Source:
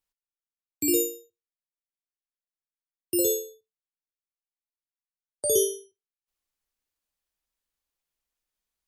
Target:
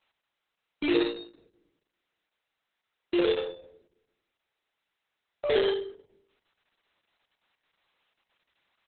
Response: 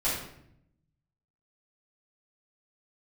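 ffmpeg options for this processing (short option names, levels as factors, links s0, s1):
-filter_complex "[0:a]equalizer=f=5200:w=3.4:g=-6.5,aeval=exprs='0.188*(abs(mod(val(0)/0.188+3,4)-2)-1)':c=same,asplit=2[s0][s1];[s1]highpass=f=720:p=1,volume=17.8,asoftclip=type=tanh:threshold=0.188[s2];[s0][s2]amix=inputs=2:normalize=0,lowpass=f=3700:p=1,volume=0.501,asplit=2[s3][s4];[s4]adelay=78,lowpass=f=2200:p=1,volume=0.282,asplit=2[s5][s6];[s6]adelay=78,lowpass=f=2200:p=1,volume=0.42,asplit=2[s7][s8];[s8]adelay=78,lowpass=f=2200:p=1,volume=0.42,asplit=2[s9][s10];[s10]adelay=78,lowpass=f=2200:p=1,volume=0.42[s11];[s3][s5][s7][s9][s11]amix=inputs=5:normalize=0,asplit=2[s12][s13];[1:a]atrim=start_sample=2205,lowpass=2900[s14];[s13][s14]afir=irnorm=-1:irlink=0,volume=0.0841[s15];[s12][s15]amix=inputs=2:normalize=0" -ar 48000 -c:a libopus -b:a 6k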